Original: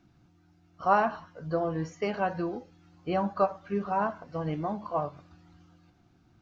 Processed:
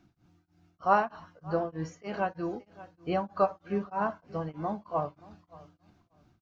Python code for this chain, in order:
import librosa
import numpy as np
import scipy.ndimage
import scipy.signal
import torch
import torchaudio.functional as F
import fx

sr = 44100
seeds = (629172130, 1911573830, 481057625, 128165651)

p1 = x + fx.echo_feedback(x, sr, ms=576, feedback_pct=22, wet_db=-19.5, dry=0)
y = p1 * np.abs(np.cos(np.pi * 3.2 * np.arange(len(p1)) / sr))